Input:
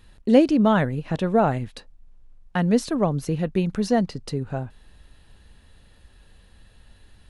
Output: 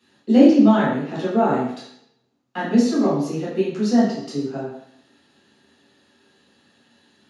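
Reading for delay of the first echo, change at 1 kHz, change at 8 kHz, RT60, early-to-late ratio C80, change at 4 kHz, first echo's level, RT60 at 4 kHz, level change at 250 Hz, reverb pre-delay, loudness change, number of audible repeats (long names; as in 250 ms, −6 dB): no echo audible, +1.5 dB, +1.0 dB, 0.65 s, 5.0 dB, +1.5 dB, no echo audible, 0.70 s, +5.0 dB, 3 ms, +3.5 dB, no echo audible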